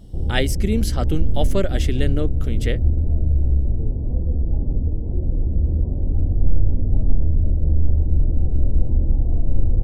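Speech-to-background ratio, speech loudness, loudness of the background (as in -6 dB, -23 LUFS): -3.5 dB, -26.0 LUFS, -22.5 LUFS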